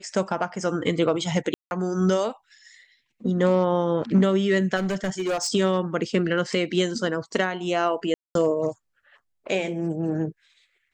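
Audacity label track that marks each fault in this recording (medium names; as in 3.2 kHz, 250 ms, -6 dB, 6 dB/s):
1.540000	1.710000	dropout 171 ms
4.760000	5.500000	clipped -21.5 dBFS
8.140000	8.350000	dropout 212 ms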